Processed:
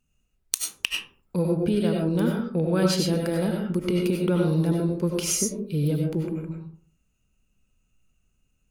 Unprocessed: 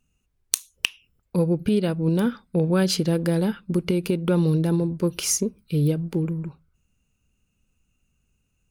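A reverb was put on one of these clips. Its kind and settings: digital reverb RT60 0.48 s, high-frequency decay 0.4×, pre-delay 55 ms, DRR 0 dB; gain -3.5 dB

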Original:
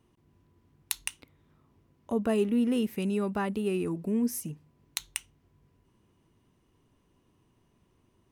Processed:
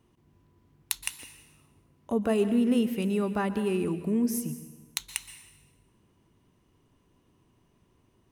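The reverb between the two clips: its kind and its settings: plate-style reverb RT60 1.1 s, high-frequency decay 0.95×, pre-delay 0.11 s, DRR 11 dB; gain +1.5 dB

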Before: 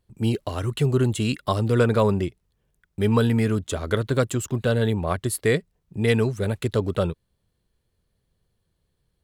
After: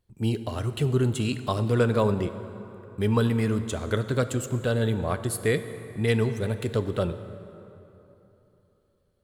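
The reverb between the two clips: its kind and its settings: plate-style reverb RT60 3.3 s, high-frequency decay 0.6×, pre-delay 0 ms, DRR 10 dB; gain -3.5 dB

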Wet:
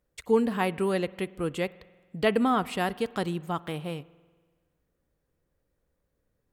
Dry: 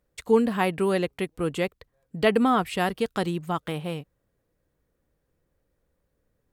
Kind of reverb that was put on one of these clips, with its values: spring tank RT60 1.5 s, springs 47 ms, chirp 65 ms, DRR 20 dB; gain -3 dB

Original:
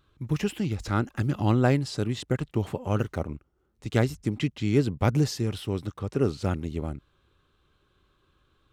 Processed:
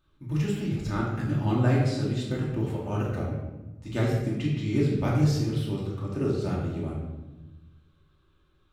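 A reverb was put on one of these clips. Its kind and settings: shoebox room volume 570 m³, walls mixed, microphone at 2.6 m; gain -8.5 dB

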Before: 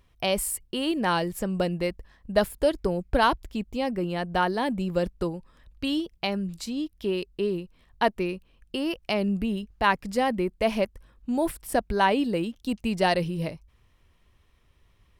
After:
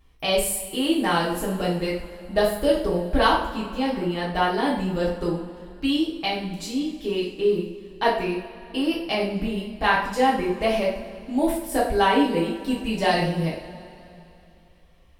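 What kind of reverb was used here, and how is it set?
two-slope reverb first 0.49 s, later 3 s, from -19 dB, DRR -6.5 dB; gain -4 dB

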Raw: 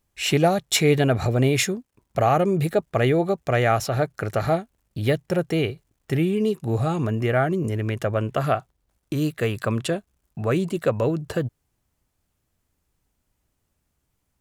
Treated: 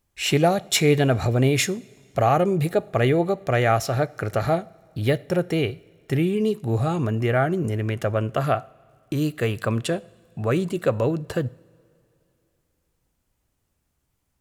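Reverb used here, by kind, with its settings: two-slope reverb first 0.53 s, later 2.9 s, from -16 dB, DRR 18.5 dB

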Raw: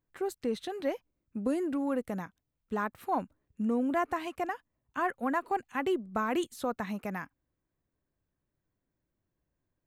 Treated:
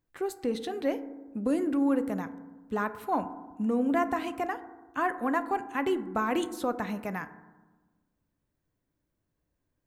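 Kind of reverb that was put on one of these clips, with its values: FDN reverb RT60 1.2 s, low-frequency decay 1.4×, high-frequency decay 0.3×, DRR 10.5 dB; gain +2 dB

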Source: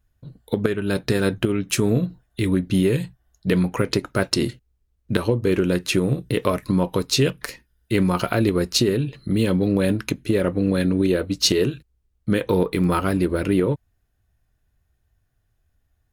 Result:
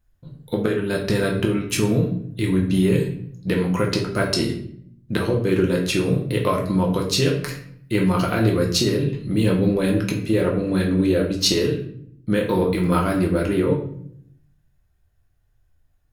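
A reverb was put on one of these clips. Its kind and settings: shoebox room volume 110 m³, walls mixed, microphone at 0.82 m; gain -2.5 dB

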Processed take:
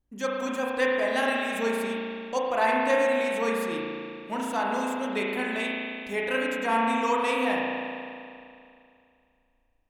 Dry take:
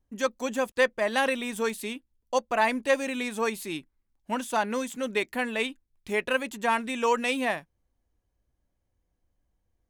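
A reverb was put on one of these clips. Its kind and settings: spring tank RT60 2.5 s, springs 35 ms, chirp 80 ms, DRR -3.5 dB; gain -4 dB

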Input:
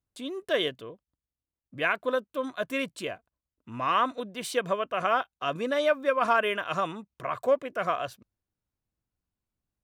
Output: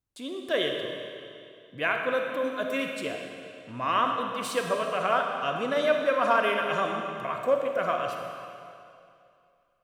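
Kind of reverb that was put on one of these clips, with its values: digital reverb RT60 2.5 s, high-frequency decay 0.95×, pre-delay 5 ms, DRR 2 dB; gain -1 dB

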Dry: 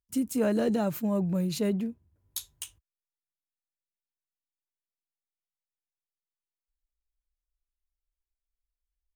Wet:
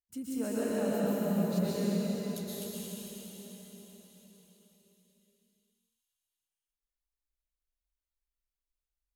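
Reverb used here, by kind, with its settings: plate-style reverb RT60 4.8 s, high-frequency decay 1×, pre-delay 0.105 s, DRR -9 dB; gain -12 dB

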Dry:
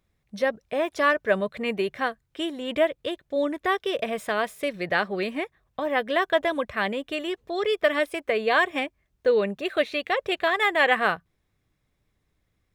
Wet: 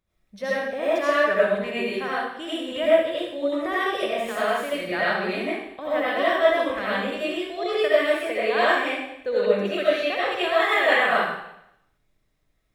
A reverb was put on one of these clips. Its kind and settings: digital reverb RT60 0.79 s, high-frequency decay 1×, pre-delay 45 ms, DRR -9 dB; gain -7.5 dB

